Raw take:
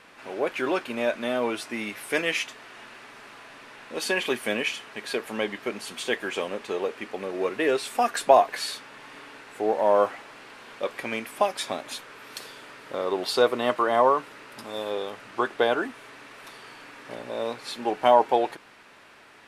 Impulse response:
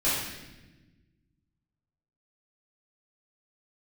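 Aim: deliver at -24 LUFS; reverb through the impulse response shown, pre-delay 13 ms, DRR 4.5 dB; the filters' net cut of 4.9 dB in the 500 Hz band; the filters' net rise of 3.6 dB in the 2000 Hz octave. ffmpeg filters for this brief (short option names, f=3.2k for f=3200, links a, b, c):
-filter_complex "[0:a]equalizer=f=500:t=o:g=-6.5,equalizer=f=2k:t=o:g=5,asplit=2[a][b];[1:a]atrim=start_sample=2205,adelay=13[c];[b][c]afir=irnorm=-1:irlink=0,volume=-16.5dB[d];[a][d]amix=inputs=2:normalize=0,volume=2.5dB"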